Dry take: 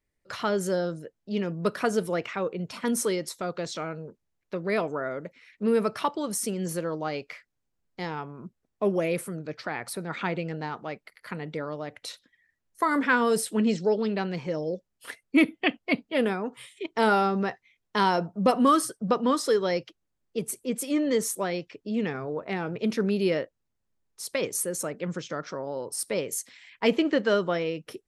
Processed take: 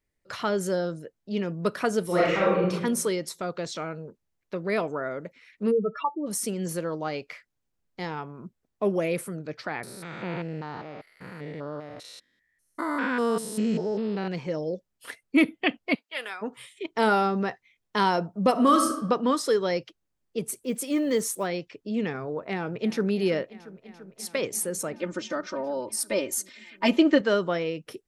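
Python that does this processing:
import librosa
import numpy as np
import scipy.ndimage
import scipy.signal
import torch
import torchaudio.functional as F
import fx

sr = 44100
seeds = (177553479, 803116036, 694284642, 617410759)

y = fx.reverb_throw(x, sr, start_s=2.05, length_s=0.65, rt60_s=0.87, drr_db=-7.5)
y = fx.spec_expand(y, sr, power=3.1, at=(5.7, 6.26), fade=0.02)
y = fx.spec_steps(y, sr, hold_ms=200, at=(9.83, 14.28))
y = fx.highpass(y, sr, hz=1200.0, slope=12, at=(15.94, 16.41), fade=0.02)
y = fx.reverb_throw(y, sr, start_s=18.51, length_s=0.44, rt60_s=0.89, drr_db=4.5)
y = fx.block_float(y, sr, bits=7, at=(20.47, 21.46), fade=0.02)
y = fx.echo_throw(y, sr, start_s=22.4, length_s=0.68, ms=340, feedback_pct=85, wet_db=-17.5)
y = fx.comb(y, sr, ms=3.3, depth=0.9, at=(24.93, 27.21))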